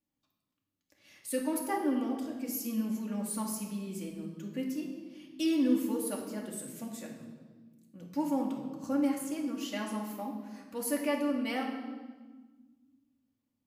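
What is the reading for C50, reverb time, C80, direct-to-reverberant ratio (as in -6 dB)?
4.0 dB, 1.4 s, 7.0 dB, -2.0 dB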